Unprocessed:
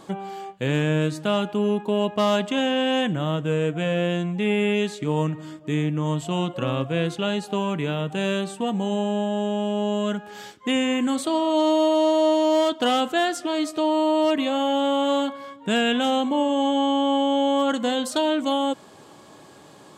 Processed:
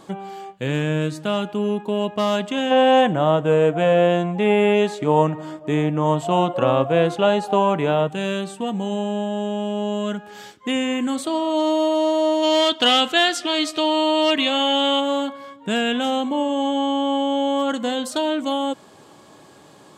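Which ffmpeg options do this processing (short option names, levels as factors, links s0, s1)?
-filter_complex "[0:a]asplit=3[s0][s1][s2];[s0]afade=t=out:st=2.7:d=0.02[s3];[s1]equalizer=f=740:t=o:w=1.7:g=13,afade=t=in:st=2.7:d=0.02,afade=t=out:st=8.07:d=0.02[s4];[s2]afade=t=in:st=8.07:d=0.02[s5];[s3][s4][s5]amix=inputs=3:normalize=0,asplit=3[s6][s7][s8];[s6]afade=t=out:st=12.42:d=0.02[s9];[s7]equalizer=f=3300:t=o:w=2.1:g=11.5,afade=t=in:st=12.42:d=0.02,afade=t=out:st=14.99:d=0.02[s10];[s8]afade=t=in:st=14.99:d=0.02[s11];[s9][s10][s11]amix=inputs=3:normalize=0"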